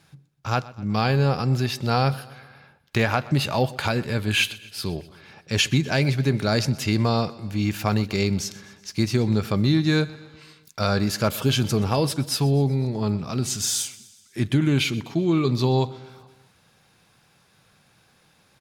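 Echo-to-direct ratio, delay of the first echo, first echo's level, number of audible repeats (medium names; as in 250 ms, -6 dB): -18.0 dB, 125 ms, -20.0 dB, 4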